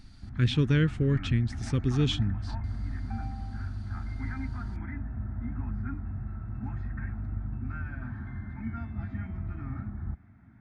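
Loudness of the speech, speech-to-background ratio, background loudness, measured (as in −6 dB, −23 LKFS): −27.5 LKFS, 9.5 dB, −37.0 LKFS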